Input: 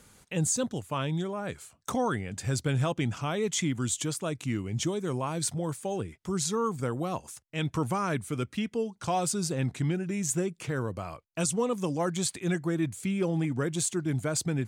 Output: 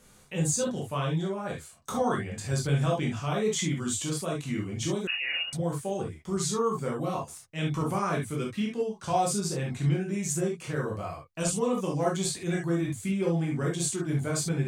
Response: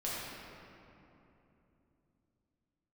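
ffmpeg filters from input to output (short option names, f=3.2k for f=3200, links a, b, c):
-filter_complex "[1:a]atrim=start_sample=2205,atrim=end_sample=3528[a];[0:a][a]afir=irnorm=-1:irlink=0,asettb=1/sr,asplit=3[b][c][d];[b]atrim=end=5.074[e];[c]atrim=start=5.07:end=5.53,asetpts=PTS-STARTPTS,afade=t=in:d=0.004:c=qsin,afade=t=out:st=0.456:d=0.004:c=qsin,lowpass=f=2.6k:t=q:w=0.5098,lowpass=f=2.6k:t=q:w=0.6013,lowpass=f=2.6k:t=q:w=0.9,lowpass=f=2.6k:t=q:w=2.563,afreqshift=-3000[f];[d]atrim=start=5.526[g];[e][f]acrossfade=d=0.004:c1=hsin:c2=qsin[h];[h][g]acrossfade=d=0.004:c1=qsin:c2=hsin"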